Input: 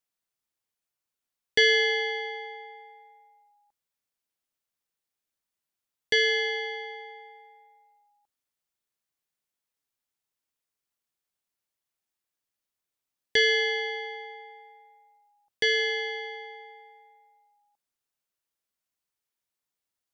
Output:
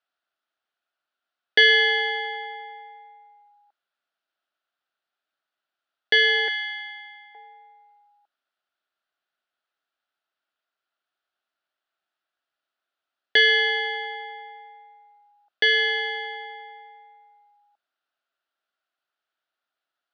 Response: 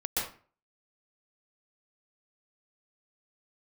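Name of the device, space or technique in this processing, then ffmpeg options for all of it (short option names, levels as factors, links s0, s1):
phone earpiece: -filter_complex "[0:a]asettb=1/sr,asplit=3[s0][s1][s2];[s0]atrim=end=6.484[s3];[s1]atrim=start=6.48:end=7.35,asetpts=PTS-STARTPTS,afade=t=in:d=0.004:c=qsin,afade=t=out:st=0.866:d=0.004:c=qsin,highpass=f=1100:w=0.5412,highpass=f=1100:w=1.3066[s4];[s2]atrim=start=7.346[s5];[s3][s4]acrossfade=d=0.004:c1=hsin:c2=qsin[s6];[s6][s5]acrossfade=d=0.004:c1=qsin:c2=hsin,highpass=390,equalizer=f=470:t=q:w=4:g=-7,equalizer=f=670:t=q:w=4:g=6,equalizer=f=980:t=q:w=4:g=-6,equalizer=f=1400:t=q:w=4:g=10,equalizer=f=2200:t=q:w=4:g=-6,lowpass=f=3900:w=0.5412,lowpass=f=3900:w=1.3066,volume=2.24"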